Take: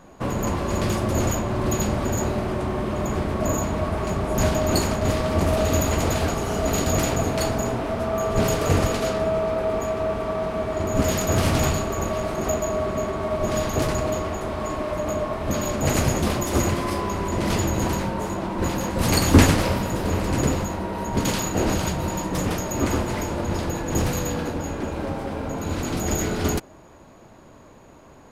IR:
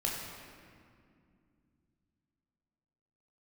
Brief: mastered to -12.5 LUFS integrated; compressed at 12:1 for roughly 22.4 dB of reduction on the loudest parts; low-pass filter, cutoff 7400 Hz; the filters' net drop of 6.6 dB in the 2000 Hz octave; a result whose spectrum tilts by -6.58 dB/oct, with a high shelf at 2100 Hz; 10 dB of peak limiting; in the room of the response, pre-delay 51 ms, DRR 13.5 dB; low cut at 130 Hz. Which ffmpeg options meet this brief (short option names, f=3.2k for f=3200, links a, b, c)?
-filter_complex "[0:a]highpass=130,lowpass=7.4k,equalizer=f=2k:t=o:g=-4,highshelf=f=2.1k:g=-8,acompressor=threshold=-33dB:ratio=12,alimiter=level_in=8dB:limit=-24dB:level=0:latency=1,volume=-8dB,asplit=2[a][b];[1:a]atrim=start_sample=2205,adelay=51[c];[b][c]afir=irnorm=-1:irlink=0,volume=-18.5dB[d];[a][d]amix=inputs=2:normalize=0,volume=28dB"